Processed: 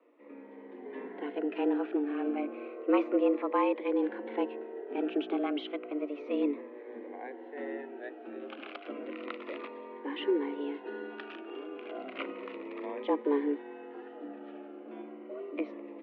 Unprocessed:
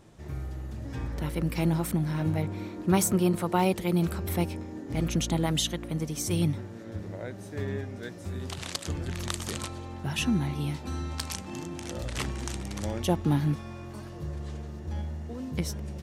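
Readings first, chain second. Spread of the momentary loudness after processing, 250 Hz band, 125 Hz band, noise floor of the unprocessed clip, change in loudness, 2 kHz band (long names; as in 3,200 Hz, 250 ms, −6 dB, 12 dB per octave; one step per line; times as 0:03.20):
16 LU, −3.0 dB, below −35 dB, −42 dBFS, −3.5 dB, −4.5 dB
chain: automatic gain control gain up to 5.5 dB
frequency shifter +31 Hz
high-frequency loss of the air 53 metres
single-sideband voice off tune +110 Hz 190–2,700 Hz
phaser whose notches keep moving one way falling 0.32 Hz
level −6 dB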